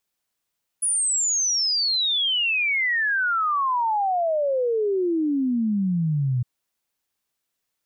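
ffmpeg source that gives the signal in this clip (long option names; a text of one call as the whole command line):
ffmpeg -f lavfi -i "aevalsrc='0.106*clip(min(t,5.61-t)/0.01,0,1)*sin(2*PI*10000*5.61/log(120/10000)*(exp(log(120/10000)*t/5.61)-1))':duration=5.61:sample_rate=44100" out.wav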